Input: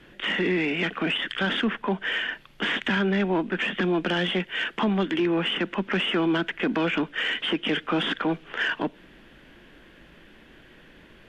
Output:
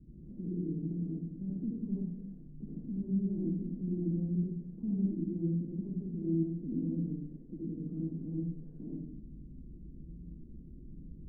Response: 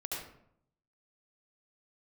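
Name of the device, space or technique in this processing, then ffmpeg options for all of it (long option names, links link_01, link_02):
club heard from the street: -filter_complex "[0:a]alimiter=level_in=3.5dB:limit=-24dB:level=0:latency=1:release=88,volume=-3.5dB,lowpass=frequency=230:width=0.5412,lowpass=frequency=230:width=1.3066[link_01];[1:a]atrim=start_sample=2205[link_02];[link_01][link_02]afir=irnorm=-1:irlink=0,volume=6dB"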